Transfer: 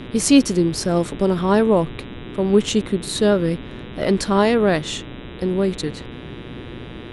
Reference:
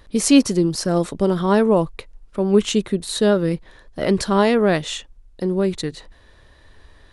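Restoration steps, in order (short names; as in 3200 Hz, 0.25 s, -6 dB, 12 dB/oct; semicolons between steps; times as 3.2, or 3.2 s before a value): de-hum 121.5 Hz, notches 32; noise print and reduce 14 dB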